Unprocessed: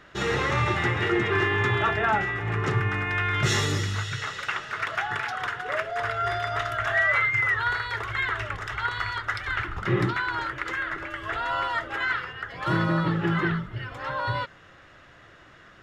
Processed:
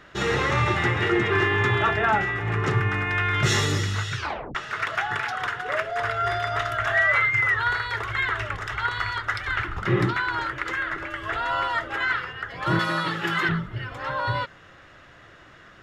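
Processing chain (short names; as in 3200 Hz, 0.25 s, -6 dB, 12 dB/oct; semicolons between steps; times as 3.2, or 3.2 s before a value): 4.15 tape stop 0.40 s; 12.79–13.49 tilt +4 dB/oct; gain +2 dB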